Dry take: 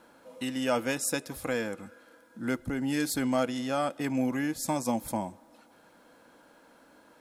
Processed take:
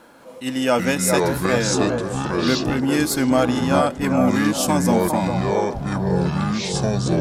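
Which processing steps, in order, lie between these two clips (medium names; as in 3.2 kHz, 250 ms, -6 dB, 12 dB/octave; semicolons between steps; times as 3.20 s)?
feedback echo behind a band-pass 406 ms, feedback 46%, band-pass 660 Hz, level -4 dB; ever faster or slower copies 202 ms, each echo -6 st, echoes 2; attacks held to a fixed rise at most 210 dB/s; trim +9 dB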